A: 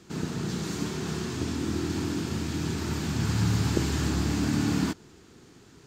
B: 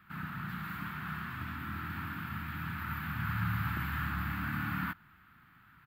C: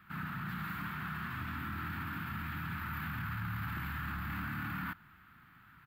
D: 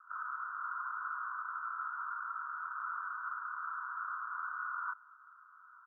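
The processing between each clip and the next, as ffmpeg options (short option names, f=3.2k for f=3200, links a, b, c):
-af "firequalizer=gain_entry='entry(180,0);entry(440,-24);entry(690,-5);entry(1300,14);entry(6100,-26);entry(14000,13)':delay=0.05:min_phase=1,volume=-8.5dB"
-af "alimiter=level_in=8dB:limit=-24dB:level=0:latency=1:release=13,volume=-8dB,volume=1dB"
-af "asuperpass=centerf=1200:order=12:qfactor=2.2,volume=5dB"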